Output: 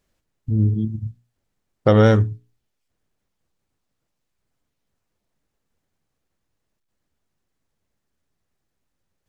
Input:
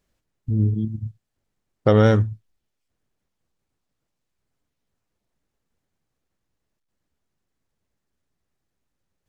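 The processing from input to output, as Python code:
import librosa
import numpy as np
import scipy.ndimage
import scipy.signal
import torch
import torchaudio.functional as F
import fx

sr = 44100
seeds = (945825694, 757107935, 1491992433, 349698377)

y = fx.hum_notches(x, sr, base_hz=60, count=7)
y = y * 10.0 ** (2.0 / 20.0)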